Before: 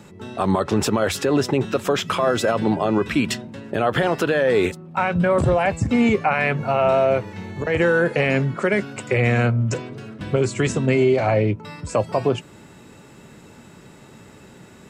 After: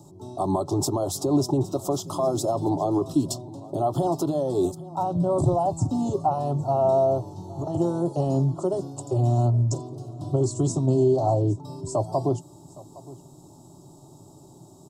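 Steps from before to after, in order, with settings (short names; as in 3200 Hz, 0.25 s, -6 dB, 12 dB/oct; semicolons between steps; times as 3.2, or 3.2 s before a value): Butterworth band-stop 2200 Hz, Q 0.53; fixed phaser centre 320 Hz, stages 8; echo 0.814 s -20 dB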